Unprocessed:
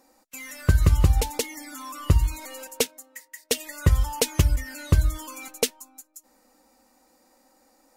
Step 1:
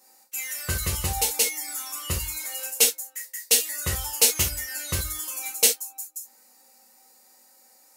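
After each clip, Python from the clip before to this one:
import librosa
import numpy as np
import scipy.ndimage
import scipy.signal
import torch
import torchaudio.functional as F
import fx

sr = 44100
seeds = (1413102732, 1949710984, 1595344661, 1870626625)

y = fx.tilt_eq(x, sr, slope=3.5)
y = fx.rev_gated(y, sr, seeds[0], gate_ms=100, shape='falling', drr_db=-4.5)
y = y * 10.0 ** (-6.5 / 20.0)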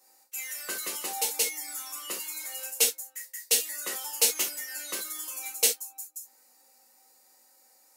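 y = scipy.signal.sosfilt(scipy.signal.butter(6, 250.0, 'highpass', fs=sr, output='sos'), x)
y = y * 10.0 ** (-4.5 / 20.0)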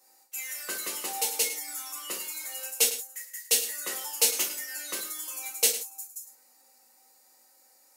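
y = x + 10.0 ** (-12.0 / 20.0) * np.pad(x, (int(105 * sr / 1000.0), 0))[:len(x)]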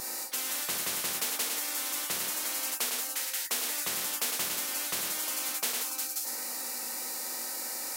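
y = fx.low_shelf(x, sr, hz=83.0, db=7.0)
y = fx.spectral_comp(y, sr, ratio=10.0)
y = y * 10.0 ** (-9.0 / 20.0)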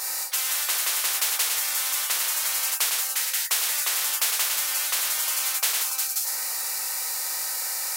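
y = scipy.signal.sosfilt(scipy.signal.butter(2, 860.0, 'highpass', fs=sr, output='sos'), x)
y = y * 10.0 ** (7.5 / 20.0)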